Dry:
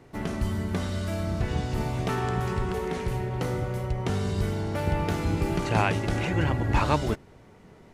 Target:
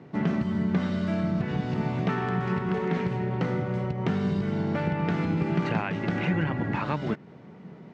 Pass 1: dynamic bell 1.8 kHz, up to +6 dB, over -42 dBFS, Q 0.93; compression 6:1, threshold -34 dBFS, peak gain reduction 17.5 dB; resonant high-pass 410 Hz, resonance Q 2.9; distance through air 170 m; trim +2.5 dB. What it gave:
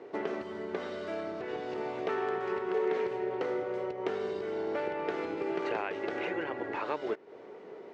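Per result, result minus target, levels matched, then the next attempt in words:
125 Hz band -19.5 dB; compression: peak gain reduction +5.5 dB
dynamic bell 1.8 kHz, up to +6 dB, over -42 dBFS, Q 0.93; compression 6:1, threshold -34 dBFS, peak gain reduction 17.5 dB; resonant high-pass 170 Hz, resonance Q 2.9; distance through air 170 m; trim +2.5 dB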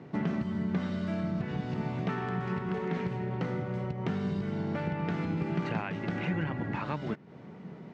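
compression: peak gain reduction +5.5 dB
dynamic bell 1.8 kHz, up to +6 dB, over -42 dBFS, Q 0.93; compression 6:1, threshold -27.5 dBFS, peak gain reduction 12 dB; resonant high-pass 170 Hz, resonance Q 2.9; distance through air 170 m; trim +2.5 dB

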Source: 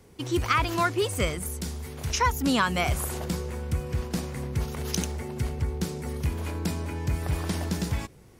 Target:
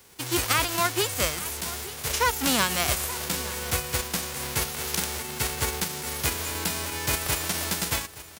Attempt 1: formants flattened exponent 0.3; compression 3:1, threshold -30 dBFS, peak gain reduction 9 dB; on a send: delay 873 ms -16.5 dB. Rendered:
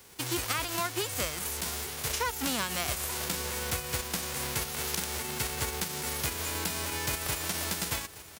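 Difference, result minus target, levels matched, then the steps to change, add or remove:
compression: peak gain reduction +9 dB
remove: compression 3:1, threshold -30 dBFS, peak gain reduction 9 dB

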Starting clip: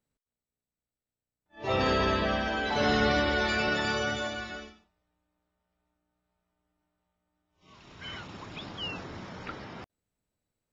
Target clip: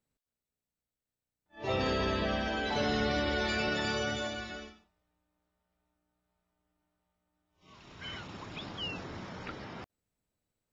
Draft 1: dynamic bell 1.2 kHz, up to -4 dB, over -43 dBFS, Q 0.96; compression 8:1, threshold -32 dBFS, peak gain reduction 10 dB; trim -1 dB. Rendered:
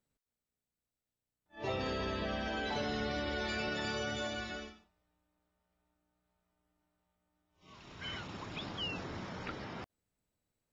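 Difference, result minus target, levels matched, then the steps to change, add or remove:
compression: peak gain reduction +6 dB
change: compression 8:1, threshold -25 dBFS, peak gain reduction 3.5 dB

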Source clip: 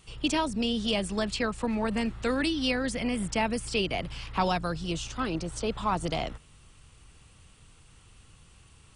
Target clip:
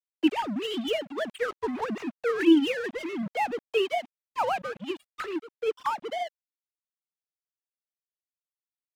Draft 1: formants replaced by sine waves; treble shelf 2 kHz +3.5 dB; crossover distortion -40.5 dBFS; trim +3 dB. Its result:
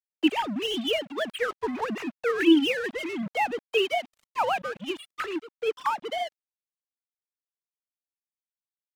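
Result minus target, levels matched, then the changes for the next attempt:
4 kHz band +4.0 dB
change: treble shelf 2 kHz -4 dB

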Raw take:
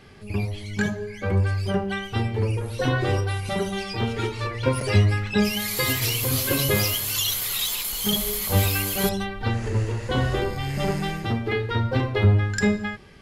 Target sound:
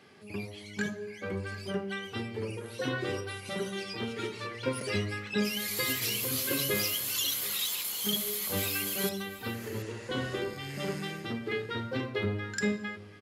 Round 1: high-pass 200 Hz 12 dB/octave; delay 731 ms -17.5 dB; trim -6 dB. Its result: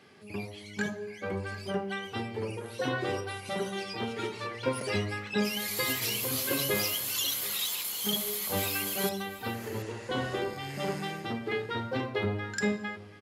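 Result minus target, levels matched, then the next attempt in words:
1 kHz band +4.5 dB
high-pass 200 Hz 12 dB/octave; dynamic bell 800 Hz, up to -8 dB, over -45 dBFS, Q 1.8; delay 731 ms -17.5 dB; trim -6 dB

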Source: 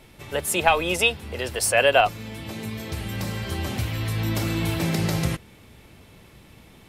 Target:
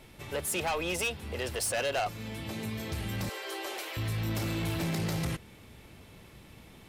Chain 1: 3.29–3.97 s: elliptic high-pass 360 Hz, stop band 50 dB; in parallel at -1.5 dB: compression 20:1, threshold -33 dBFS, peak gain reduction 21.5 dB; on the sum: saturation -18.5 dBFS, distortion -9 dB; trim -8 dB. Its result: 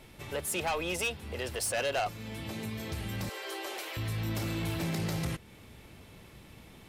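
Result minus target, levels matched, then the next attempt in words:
compression: peak gain reduction +8.5 dB
3.29–3.97 s: elliptic high-pass 360 Hz, stop band 50 dB; in parallel at -1.5 dB: compression 20:1, threshold -24 dBFS, peak gain reduction 13 dB; on the sum: saturation -18.5 dBFS, distortion -9 dB; trim -8 dB

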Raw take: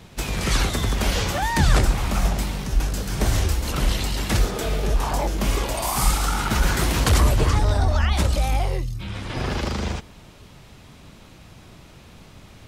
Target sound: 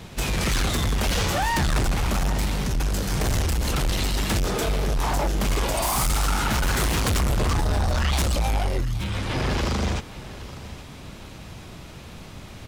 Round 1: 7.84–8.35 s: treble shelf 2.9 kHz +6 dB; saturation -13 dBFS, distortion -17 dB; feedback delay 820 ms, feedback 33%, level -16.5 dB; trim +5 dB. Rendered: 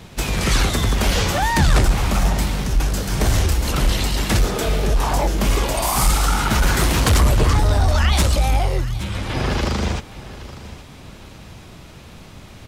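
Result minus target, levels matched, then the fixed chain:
saturation: distortion -10 dB
7.84–8.35 s: treble shelf 2.9 kHz +6 dB; saturation -24.5 dBFS, distortion -7 dB; feedback delay 820 ms, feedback 33%, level -16.5 dB; trim +5 dB

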